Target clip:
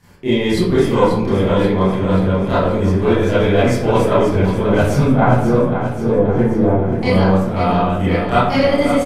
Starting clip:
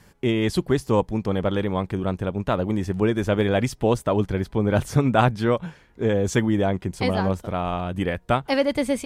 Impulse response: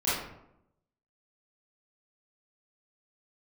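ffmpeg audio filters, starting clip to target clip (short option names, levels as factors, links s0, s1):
-filter_complex "[0:a]asettb=1/sr,asplit=3[s0][s1][s2];[s0]atrim=end=5.034[s3];[s1]atrim=start=5.03:end=7.03,asetpts=PTS-STARTPTS,afade=t=in:d=0.004:c=qsin,afade=t=out:st=1.996:d=0.004:c=qsin,lowpass=1000[s4];[s2]atrim=start=7.026[s5];[s3][s4]acrossfade=d=0.004:c1=hsin:c2=qsin[s6];[s6][s5]acrossfade=d=0.004:c1=qsin:c2=hsin,aeval=exprs='0.562*(cos(1*acos(clip(val(0)/0.562,-1,1)))-cos(1*PI/2))+0.178*(cos(2*acos(clip(val(0)/0.562,-1,1)))-cos(2*PI/2))':c=same,aecho=1:1:534|1068|1602|2136|2670|3204|3738:0.355|0.213|0.128|0.0766|0.046|0.0276|0.0166[s7];[1:a]atrim=start_sample=2205[s8];[s7][s8]afir=irnorm=-1:irlink=0,volume=0.668"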